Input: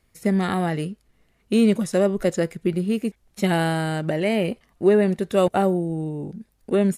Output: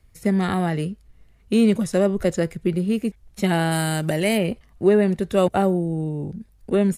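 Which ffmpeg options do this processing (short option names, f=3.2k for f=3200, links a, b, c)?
-filter_complex "[0:a]asplit=3[a][b][c];[a]afade=t=out:st=3.71:d=0.02[d];[b]aemphasis=mode=production:type=75kf,afade=t=in:st=3.71:d=0.02,afade=t=out:st=4.37:d=0.02[e];[c]afade=t=in:st=4.37:d=0.02[f];[d][e][f]amix=inputs=3:normalize=0,acrossover=split=110[g][h];[g]aeval=exprs='0.0251*sin(PI/2*2.82*val(0)/0.0251)':c=same[i];[i][h]amix=inputs=2:normalize=0"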